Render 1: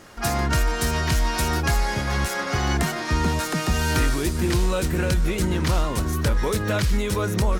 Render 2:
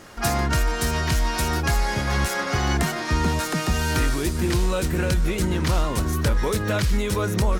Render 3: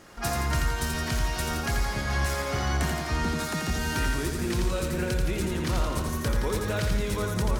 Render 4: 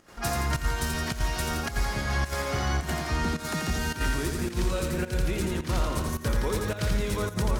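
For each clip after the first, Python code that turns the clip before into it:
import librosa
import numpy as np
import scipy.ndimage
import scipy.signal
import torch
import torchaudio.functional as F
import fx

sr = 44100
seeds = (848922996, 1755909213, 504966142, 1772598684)

y1 = fx.rider(x, sr, range_db=10, speed_s=0.5)
y2 = fx.echo_feedback(y1, sr, ms=85, feedback_pct=59, wet_db=-4.5)
y2 = F.gain(torch.from_numpy(y2), -6.5).numpy()
y3 = fx.volume_shaper(y2, sr, bpm=107, per_beat=1, depth_db=-12, release_ms=79.0, shape='slow start')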